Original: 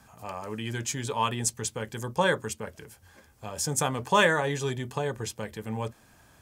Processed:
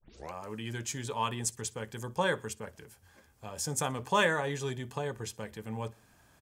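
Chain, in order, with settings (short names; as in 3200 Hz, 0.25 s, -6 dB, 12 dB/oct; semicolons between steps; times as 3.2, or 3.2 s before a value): tape start at the beginning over 0.33 s; feedback echo 61 ms, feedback 43%, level -24 dB; gain -5 dB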